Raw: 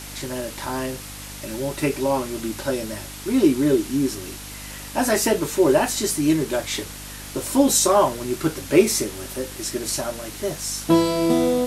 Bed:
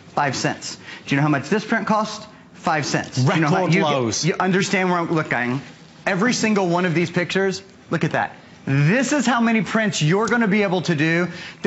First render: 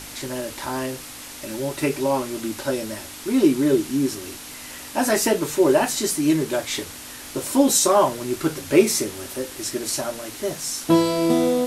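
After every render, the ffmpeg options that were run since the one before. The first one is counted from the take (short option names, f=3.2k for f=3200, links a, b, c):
-af "bandreject=f=50:t=h:w=4,bandreject=f=100:t=h:w=4,bandreject=f=150:t=h:w=4,bandreject=f=200:t=h:w=4"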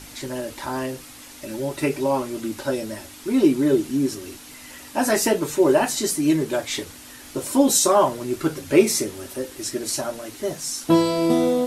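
-af "afftdn=nr=6:nf=-38"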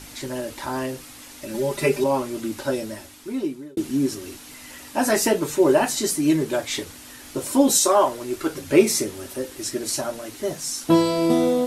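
-filter_complex "[0:a]asettb=1/sr,asplit=3[a][b][c];[a]atrim=end=1.544[d];[b]atrim=start=1.54:end=2.04,asetpts=PTS-STARTPTS,afade=t=in:d=0.004:c=qsin,afade=t=out:st=0.496:d=0.004:c=qsin,aecho=1:1:5:0.94,atrim=end_sample=22050[e];[c]atrim=start=2.036[f];[d][e]acrossfade=d=0.004:c1=hsin:c2=qsin[g];[g][f]acrossfade=d=0.004:c1=qsin:c2=hsin,asettb=1/sr,asplit=3[h][i][j];[h]atrim=end=7.784[k];[i]atrim=start=7.78:end=8.55,asetpts=PTS-STARTPTS,afade=t=in:d=0.004:c=qsin,afade=t=out:st=0.766:d=0.004:c=qsin,equalizer=f=160:t=o:w=0.77:g=-15[l];[j]atrim=start=8.546[m];[k][l]acrossfade=d=0.004:c1=hsin:c2=qsin[n];[n][m]acrossfade=d=0.004:c1=qsin:c2=hsin,asplit=2[o][p];[o]atrim=end=3.77,asetpts=PTS-STARTPTS,afade=t=out:st=2.76:d=1.01[q];[p]atrim=start=3.77,asetpts=PTS-STARTPTS,afade=t=in:d=0.004:c=hsin[r];[q][r]concat=n=2:v=0:a=1"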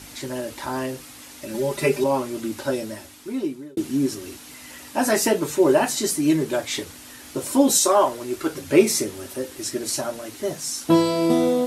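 -af "highpass=49"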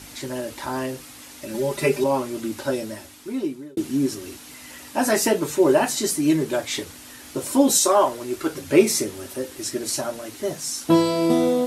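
-af anull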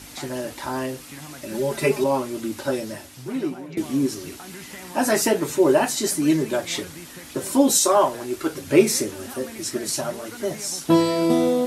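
-filter_complex "[1:a]volume=-22.5dB[a];[0:a][a]amix=inputs=2:normalize=0"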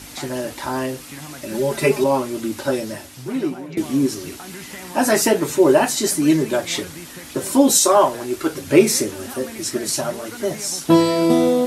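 -af "volume=3.5dB,alimiter=limit=-1dB:level=0:latency=1"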